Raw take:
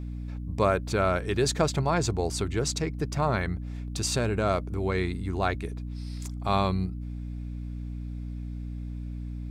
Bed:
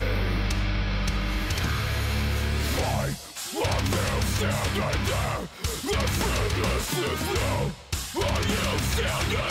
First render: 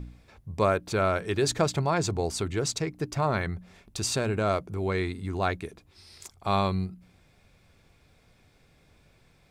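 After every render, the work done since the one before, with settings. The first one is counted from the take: de-hum 60 Hz, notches 5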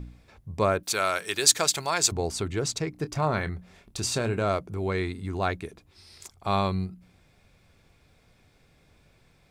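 0.83–2.12 s: tilt EQ +4.5 dB/octave; 2.90–4.46 s: doubling 26 ms -12 dB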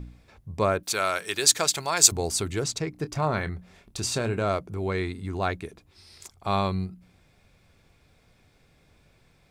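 1.97–2.64 s: treble shelf 5.4 kHz +11.5 dB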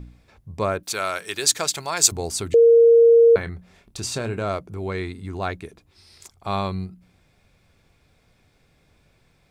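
2.54–3.36 s: bleep 464 Hz -9 dBFS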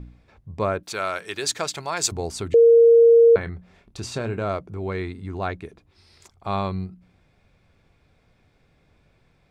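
low-pass 2.9 kHz 6 dB/octave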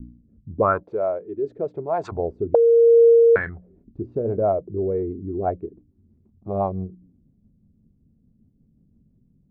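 rotary cabinet horn 0.9 Hz, later 6 Hz, at 2.85 s; touch-sensitive low-pass 220–1700 Hz up, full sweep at -18 dBFS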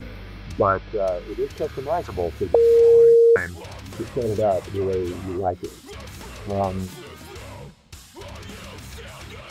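add bed -12.5 dB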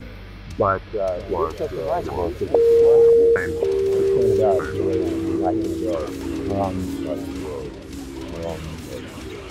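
bucket-brigade echo 580 ms, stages 2048, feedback 69%, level -14 dB; ever faster or slower copies 600 ms, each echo -3 st, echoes 3, each echo -6 dB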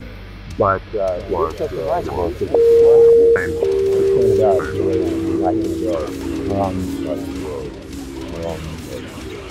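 trim +3.5 dB; peak limiter -2 dBFS, peak gain reduction 2 dB

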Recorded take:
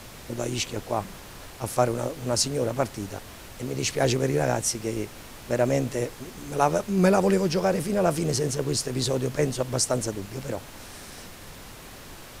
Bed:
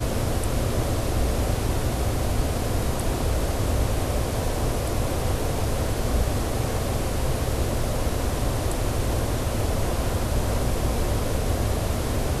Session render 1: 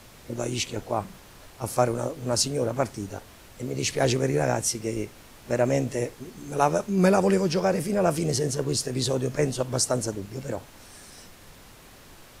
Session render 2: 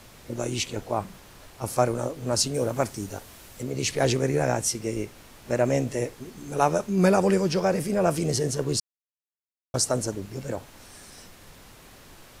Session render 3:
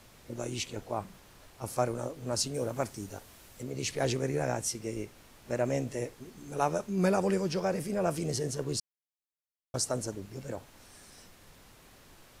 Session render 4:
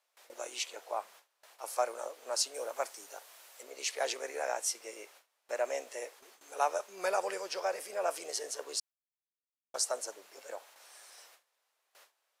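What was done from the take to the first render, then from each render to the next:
noise print and reduce 6 dB
2.54–3.63 s: treble shelf 5.7 kHz +7.5 dB; 8.80–9.74 s: mute
trim -7 dB
high-pass 550 Hz 24 dB/octave; gate with hold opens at -47 dBFS

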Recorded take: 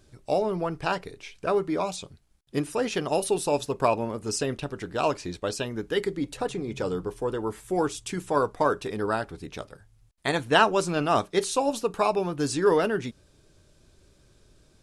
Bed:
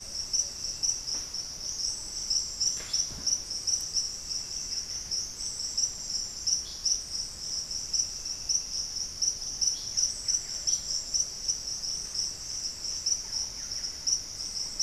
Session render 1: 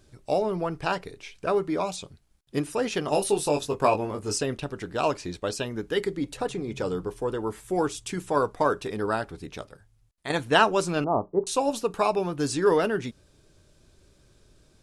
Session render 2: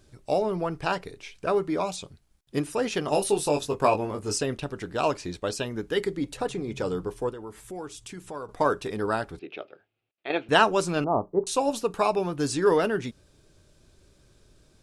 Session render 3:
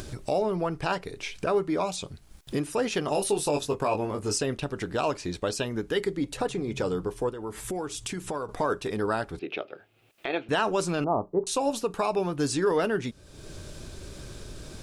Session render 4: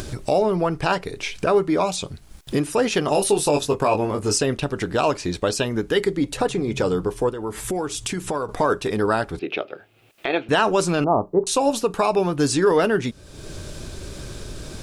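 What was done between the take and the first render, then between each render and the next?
3.06–4.38 s: doubling 20 ms -4.5 dB; 9.45–10.30 s: fade out, to -8 dB; 11.04–11.47 s: elliptic low-pass 1 kHz, stop band 80 dB
7.29–8.49 s: compression 2:1, threshold -43 dBFS; 9.39–10.49 s: cabinet simulation 360–3300 Hz, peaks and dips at 360 Hz +8 dB, 680 Hz +3 dB, 1 kHz -9 dB, 1.8 kHz -5 dB, 2.6 kHz +7 dB
upward compressor, threshold -25 dBFS; peak limiter -16 dBFS, peak gain reduction 9.5 dB
trim +7 dB

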